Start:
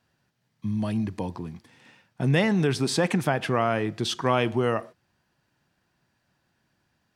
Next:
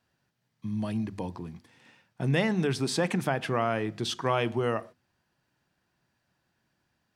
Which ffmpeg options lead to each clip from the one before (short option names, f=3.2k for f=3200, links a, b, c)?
-af "bandreject=f=50:t=h:w=6,bandreject=f=100:t=h:w=6,bandreject=f=150:t=h:w=6,bandreject=f=200:t=h:w=6,bandreject=f=250:t=h:w=6,volume=-3.5dB"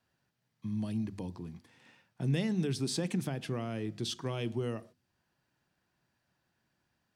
-filter_complex "[0:a]acrossover=split=410|3000[a][b][c];[b]acompressor=threshold=-54dB:ratio=2[d];[a][d][c]amix=inputs=3:normalize=0,volume=-3dB"